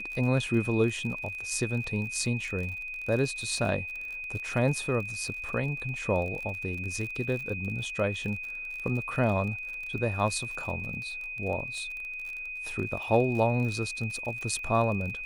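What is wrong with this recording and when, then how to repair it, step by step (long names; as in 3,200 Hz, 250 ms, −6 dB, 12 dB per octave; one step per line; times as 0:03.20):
surface crackle 40 per second −35 dBFS
whistle 2,500 Hz −35 dBFS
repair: click removal
notch filter 2,500 Hz, Q 30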